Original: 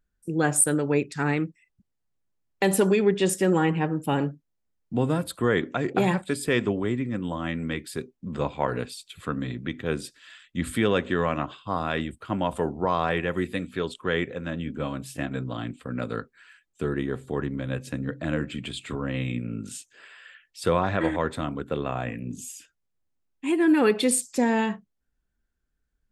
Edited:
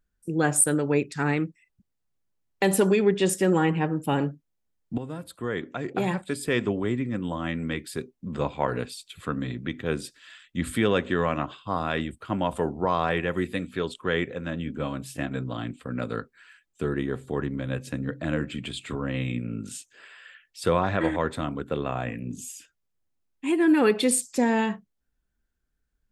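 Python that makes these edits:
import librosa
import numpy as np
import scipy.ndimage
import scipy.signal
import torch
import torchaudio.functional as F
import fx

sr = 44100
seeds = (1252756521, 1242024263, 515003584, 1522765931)

y = fx.edit(x, sr, fx.fade_in_from(start_s=4.98, length_s=1.95, floor_db=-13.0), tone=tone)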